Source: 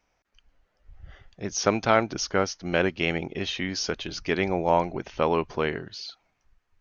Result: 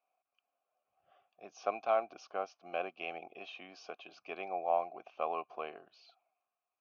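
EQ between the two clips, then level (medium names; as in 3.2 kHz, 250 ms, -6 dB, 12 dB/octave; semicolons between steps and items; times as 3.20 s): vowel filter a; high-pass 170 Hz 12 dB/octave; -1.5 dB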